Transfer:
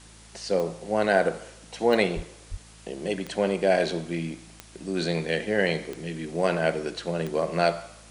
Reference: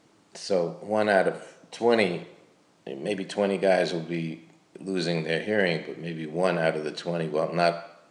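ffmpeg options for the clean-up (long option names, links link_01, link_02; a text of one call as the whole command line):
ffmpeg -i in.wav -filter_complex "[0:a]adeclick=threshold=4,bandreject=frequency=54.7:width_type=h:width=4,bandreject=frequency=109.4:width_type=h:width=4,bandreject=frequency=164.1:width_type=h:width=4,bandreject=frequency=218.8:width_type=h:width=4,asplit=3[link_01][link_02][link_03];[link_01]afade=type=out:start_time=2.15:duration=0.02[link_04];[link_02]highpass=frequency=140:width=0.5412,highpass=frequency=140:width=1.3066,afade=type=in:start_time=2.15:duration=0.02,afade=type=out:start_time=2.27:duration=0.02[link_05];[link_03]afade=type=in:start_time=2.27:duration=0.02[link_06];[link_04][link_05][link_06]amix=inputs=3:normalize=0,asplit=3[link_07][link_08][link_09];[link_07]afade=type=out:start_time=2.5:duration=0.02[link_10];[link_08]highpass=frequency=140:width=0.5412,highpass=frequency=140:width=1.3066,afade=type=in:start_time=2.5:duration=0.02,afade=type=out:start_time=2.62:duration=0.02[link_11];[link_09]afade=type=in:start_time=2.62:duration=0.02[link_12];[link_10][link_11][link_12]amix=inputs=3:normalize=0,afftdn=noise_reduction=10:noise_floor=-49" out.wav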